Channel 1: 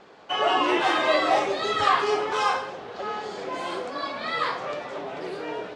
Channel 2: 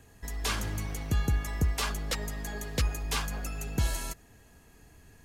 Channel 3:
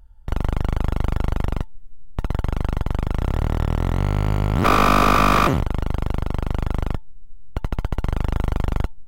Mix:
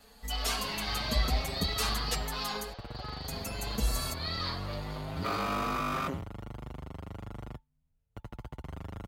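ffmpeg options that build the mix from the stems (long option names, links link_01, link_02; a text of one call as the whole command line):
ffmpeg -i stem1.wav -i stem2.wav -i stem3.wav -filter_complex "[0:a]highpass=frequency=490:width=0.5412,highpass=frequency=490:width=1.3066,asoftclip=type=hard:threshold=-25dB,lowpass=frequency=4500:width_type=q:width=8.9,volume=-8.5dB[link_01];[1:a]highshelf=frequency=7800:gain=6.5,aecho=1:1:4.5:0.92,volume=-2.5dB,asplit=3[link_02][link_03][link_04];[link_02]atrim=end=2.73,asetpts=PTS-STARTPTS,afade=type=out:start_time=2.726:duration=0.004:curve=hsin[link_05];[link_03]atrim=start=2.73:end=3.28,asetpts=PTS-STARTPTS,volume=0[link_06];[link_04]atrim=start=3.28,asetpts=PTS-STARTPTS,afade=type=in:duration=0.004:curve=hsin[link_07];[link_05][link_06][link_07]concat=n=3:v=0:a=1[link_08];[2:a]highpass=66,adelay=600,volume=-13dB[link_09];[link_01][link_08][link_09]amix=inputs=3:normalize=0,asplit=2[link_10][link_11];[link_11]adelay=6.7,afreqshift=1.1[link_12];[link_10][link_12]amix=inputs=2:normalize=1" out.wav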